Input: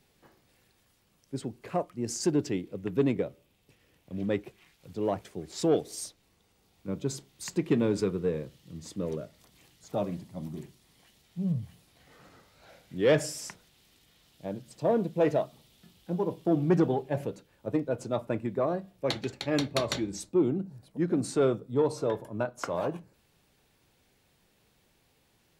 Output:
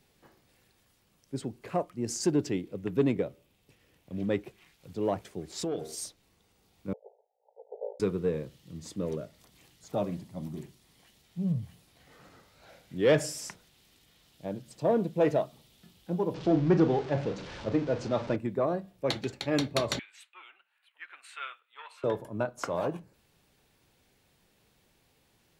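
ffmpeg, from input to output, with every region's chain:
-filter_complex "[0:a]asettb=1/sr,asplit=3[a][b][c];[a]atrim=end=5.534[d];[b]atrim=start=5.53:end=5.95,asetpts=PTS-STARTPTS,afade=t=in:d=0.004:c=qsin,afade=t=out:st=0.416:d=0.004:c=qsin,bandreject=f=77.96:t=h:w=4,bandreject=f=155.92:t=h:w=4,bandreject=f=233.88:t=h:w=4,bandreject=f=311.84:t=h:w=4,bandreject=f=389.8:t=h:w=4,bandreject=f=467.76:t=h:w=4,bandreject=f=545.72:t=h:w=4,bandreject=f=623.68:t=h:w=4,bandreject=f=701.64:t=h:w=4,bandreject=f=779.6:t=h:w=4,bandreject=f=857.56:t=h:w=4,bandreject=f=935.52:t=h:w=4,bandreject=f=1.01348k:t=h:w=4,bandreject=f=1.09144k:t=h:w=4,bandreject=f=1.1694k:t=h:w=4,bandreject=f=1.24736k:t=h:w=4,bandreject=f=1.32532k:t=h:w=4,bandreject=f=1.40328k:t=h:w=4,bandreject=f=1.48124k:t=h:w=4,bandreject=f=1.5592k:t=h:w=4,bandreject=f=1.63716k:t=h:w=4,bandreject=f=1.71512k:t=h:w=4,bandreject=f=1.79308k:t=h:w=4,bandreject=f=1.87104k:t=h:w=4,bandreject=f=1.949k:t=h:w=4,bandreject=f=2.02696k:t=h:w=4,bandreject=f=2.10492k:t=h:w=4,bandreject=f=2.18288k:t=h:w=4,bandreject=f=2.26084k:t=h:w=4,acompressor=threshold=-29dB:ratio=4:attack=3.2:release=140:knee=1:detection=peak[e];[c]atrim=start=5.946[f];[d][e]acrossfade=d=0.004:c1=hsin:c2=qsin[g];[g][f]acrossfade=d=0.004:c1=qsin:c2=hsin,asettb=1/sr,asplit=3[h][i][j];[h]atrim=end=6.934[k];[i]atrim=start=6.93:end=8,asetpts=PTS-STARTPTS,afade=t=in:d=0.004:c=qsin,afade=t=out:st=1.066:d=0.004:c=qsin,asuperpass=centerf=630:order=20:qfactor=1.5,aeval=exprs='val(0)*sin(2*PI*28*n/s)':c=same[l];[j]atrim=start=7.996[m];[k][l]acrossfade=d=0.004:c1=hsin:c2=qsin[n];[n][m]acrossfade=d=0.004:c1=qsin:c2=hsin,asettb=1/sr,asplit=3[o][p][q];[o]atrim=end=16.344[r];[p]atrim=start=16.34:end=18.36,asetpts=PTS-STARTPTS,afade=t=in:d=0.004:c=qsin,afade=t=out:st=2.016:d=0.004:c=qsin,aeval=exprs='val(0)+0.5*0.0141*sgn(val(0))':c=same,lowpass=f=5.6k:w=0.5412,lowpass=f=5.6k:w=1.3066,asplit=2[s][t];[t]adelay=37,volume=-11dB[u];[s][u]amix=inputs=2:normalize=0,atrim=end_sample=89082[v];[q]atrim=start=18.356[w];[r][v]acrossfade=d=0.004:c1=hsin:c2=qsin[x];[x][w]acrossfade=d=0.004:c1=qsin:c2=hsin,asettb=1/sr,asplit=3[y][z][aa];[y]atrim=end=19.994[ab];[z]atrim=start=19.99:end=22.04,asetpts=PTS-STARTPTS,afade=t=in:d=0.004:c=qsin,afade=t=out:st=2.046:d=0.004:c=qsin,highpass=f=1.3k:w=0.5412,highpass=f=1.3k:w=1.3066,highshelf=f=3.9k:t=q:w=3:g=-12[ac];[aa]atrim=start=22.036[ad];[ab][ac]acrossfade=d=0.004:c1=hsin:c2=qsin[ae];[ae][ad]acrossfade=d=0.004:c1=qsin:c2=hsin"

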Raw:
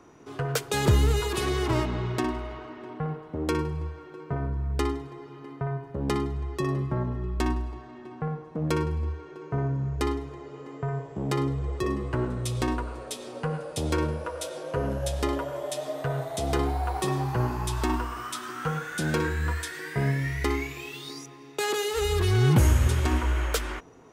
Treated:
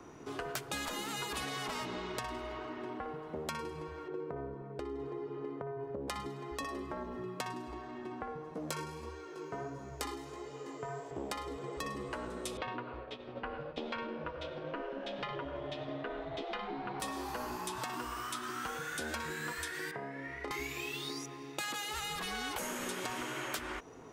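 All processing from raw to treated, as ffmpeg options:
-filter_complex "[0:a]asettb=1/sr,asplit=3[a][b][c];[a]atrim=end=4.084[d];[b]atrim=start=4.08:end=6.08,asetpts=PTS-STARTPTS,afade=t=in:d=0.004:c=qsin,afade=t=out:st=1.996:d=0.004:c=qsin,lowpass=f=1.6k:p=1,equalizer=f=440:t=o:w=0.73:g=9,acompressor=threshold=-29dB:ratio=16:attack=3.2:release=140:knee=1:detection=peak[e];[c]atrim=start=6.076[f];[d][e]acrossfade=d=0.004:c1=hsin:c2=qsin[g];[g][f]acrossfade=d=0.004:c1=qsin:c2=hsin,asettb=1/sr,asplit=3[h][i][j];[h]atrim=end=8.544[k];[i]atrim=start=8.54:end=11.11,asetpts=PTS-STARTPTS,afade=t=in:d=0.004:c=qsin,afade=t=out:st=2.566:d=0.004:c=qsin,bass=f=250:g=-6,treble=f=4k:g=11,flanger=delay=15.5:depth=5.2:speed=1.5[l];[j]atrim=start=11.106[m];[k][l]acrossfade=d=0.004:c1=hsin:c2=qsin[n];[n][m]acrossfade=d=0.004:c1=qsin:c2=hsin,asettb=1/sr,asplit=3[o][p][q];[o]atrim=end=12.574[r];[p]atrim=start=12.57:end=17,asetpts=PTS-STARTPTS,afade=t=in:d=0.004:c=qsin,afade=t=out:st=4.426:d=0.004:c=qsin,lowpass=f=3.2k:w=0.5412,lowpass=f=3.2k:w=1.3066,agate=range=-33dB:threshold=-35dB:ratio=3:release=100:detection=peak,asubboost=boost=10:cutoff=190[s];[q]atrim=start=16.996[t];[r][s]acrossfade=d=0.004:c1=hsin:c2=qsin[u];[u][t]acrossfade=d=0.004:c1=qsin:c2=hsin,asettb=1/sr,asplit=3[v][w][x];[v]atrim=end=19.914[y];[w]atrim=start=19.91:end=20.51,asetpts=PTS-STARTPTS,afade=t=in:d=0.004:c=qsin,afade=t=out:st=0.596:d=0.004:c=qsin,acompressor=threshold=-29dB:ratio=4:attack=3.2:release=140:knee=1:detection=peak,bandpass=f=700:t=q:w=0.82,asplit=2[z][aa];[aa]adelay=33,volume=-6dB[ab];[z][ab]amix=inputs=2:normalize=0,atrim=end_sample=26460[ac];[x]atrim=start=20.506[ad];[y][ac]acrossfade=d=0.004:c1=hsin:c2=qsin[ae];[ae][ad]acrossfade=d=0.004:c1=qsin:c2=hsin,afftfilt=real='re*lt(hypot(re,im),0.2)':imag='im*lt(hypot(re,im),0.2)':win_size=1024:overlap=0.75,acrossover=split=250|3000[af][ag][ah];[af]acompressor=threshold=-52dB:ratio=4[ai];[ag]acompressor=threshold=-40dB:ratio=4[aj];[ah]acompressor=threshold=-44dB:ratio=4[ak];[ai][aj][ak]amix=inputs=3:normalize=0,volume=1dB"

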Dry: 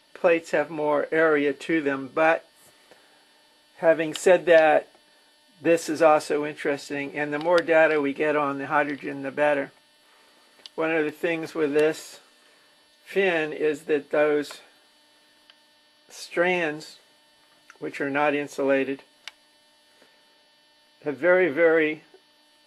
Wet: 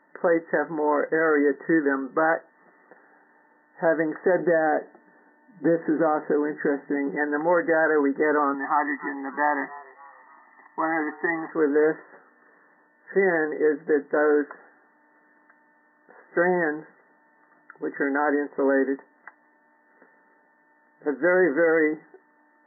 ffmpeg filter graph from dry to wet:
-filter_complex "[0:a]asettb=1/sr,asplit=3[a][b][c];[a]atrim=end=4.394[d];[b]atrim=start=4.39:end=7.16,asetpts=PTS-STARTPTS,afade=t=in:d=0.004:c=qsin,afade=t=out:st=2.766:d=0.004:c=qsin,lowshelf=f=360:g=9.5,acompressor=threshold=-24dB:ratio=2:attack=3.2:release=140:knee=1:detection=peak[e];[c]atrim=start=7.156[f];[d][e]acrossfade=d=0.004:c1=hsin:c2=qsin[g];[g][f]acrossfade=d=0.004:c1=qsin:c2=hsin,asettb=1/sr,asplit=3[h][i][j];[h]atrim=end=8.544[k];[i]atrim=start=8.54:end=11.52,asetpts=PTS-STARTPTS,afade=t=in:d=0.004:c=qsin,afade=t=out:st=2.976:d=0.004:c=qsin,highpass=340,aecho=1:1:1:1,atrim=end_sample=131418,asplit=4[l][m][n][o];[m]adelay=289,afreqshift=120,volume=-21dB[p];[n]adelay=578,afreqshift=240,volume=-28.1dB[q];[o]adelay=867,afreqshift=360,volume=-35.3dB[r];[l][p][q][r]amix=inputs=4:normalize=0,atrim=end_sample=131418[s];[j]atrim=start=11.516[t];[k][s]acrossfade=d=0.004:c1=hsin:c2=qsin[u];[u][t]acrossfade=d=0.004:c1=qsin:c2=hsin,afftfilt=real='re*between(b*sr/4096,160,2000)':imag='im*between(b*sr/4096,160,2000)':win_size=4096:overlap=0.75,equalizer=f=600:t=o:w=0.27:g=-6.5,alimiter=limit=-15.5dB:level=0:latency=1:release=41,volume=3.5dB"

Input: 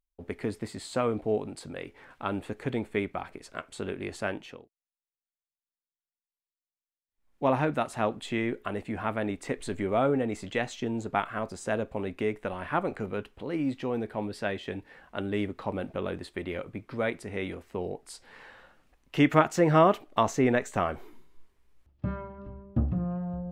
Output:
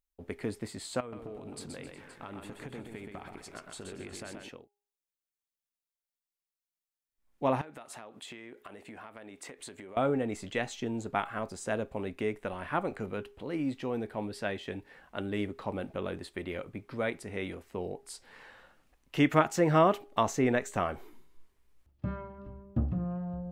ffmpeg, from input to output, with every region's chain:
-filter_complex "[0:a]asettb=1/sr,asplit=3[a][b][c];[a]atrim=end=1.004[d];[b]atrim=start=1:end=4.49,asetpts=PTS-STARTPTS,afade=t=in:d=0.004:c=qsin,afade=t=out:st=3.486:d=0.004:c=qsin,acompressor=threshold=-36dB:ratio=10:attack=3.2:release=140:knee=1:detection=peak,aecho=1:1:126|265|364|522:0.562|0.2|0.126|0.2,atrim=end_sample=153909[e];[c]atrim=start=4.486[f];[d][e]acrossfade=d=0.004:c1=hsin:c2=qsin[g];[g][f]acrossfade=d=0.004:c1=qsin:c2=hsin,asettb=1/sr,asplit=3[h][i][j];[h]atrim=end=7.614[k];[i]atrim=start=7.61:end=9.97,asetpts=PTS-STARTPTS,afade=t=in:d=0.004:c=qsin,afade=t=out:st=2.356:d=0.004:c=qsin,highpass=f=380:p=1,acompressor=threshold=-39dB:ratio=16:attack=3.2:release=140:knee=1:detection=peak[l];[j]atrim=start=9.966[m];[k][l]acrossfade=d=0.004:c1=hsin:c2=qsin[n];[n][m]acrossfade=d=0.004:c1=qsin:c2=hsin,highshelf=f=5.8k:g=5,bandreject=f=407.5:t=h:w=4,bandreject=f=815:t=h:w=4,volume=-3dB"

